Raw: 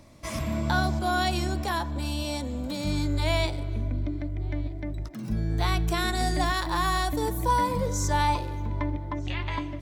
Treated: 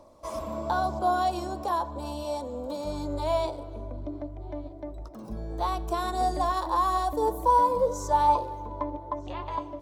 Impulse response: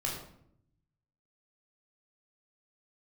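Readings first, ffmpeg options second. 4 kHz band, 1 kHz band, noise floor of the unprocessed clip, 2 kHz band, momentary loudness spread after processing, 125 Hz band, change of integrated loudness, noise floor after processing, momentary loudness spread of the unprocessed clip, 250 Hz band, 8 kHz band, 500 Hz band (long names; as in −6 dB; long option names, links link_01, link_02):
−9.5 dB, +3.5 dB, −35 dBFS, −10.0 dB, 16 LU, −10.5 dB, 0.0 dB, −43 dBFS, 8 LU, −5.5 dB, −8.0 dB, +3.5 dB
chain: -filter_complex "[0:a]equalizer=frequency=125:width_type=o:width=1:gain=-10,equalizer=frequency=500:width_type=o:width=1:gain=11,equalizer=frequency=1000:width_type=o:width=1:gain=12,equalizer=frequency=2000:width_type=o:width=1:gain=-11,aphaser=in_gain=1:out_gain=1:delay=3.8:decay=0.23:speed=0.96:type=sinusoidal,asplit=2[link_01][link_02];[1:a]atrim=start_sample=2205[link_03];[link_02][link_03]afir=irnorm=-1:irlink=0,volume=-22.5dB[link_04];[link_01][link_04]amix=inputs=2:normalize=0,volume=-8.5dB"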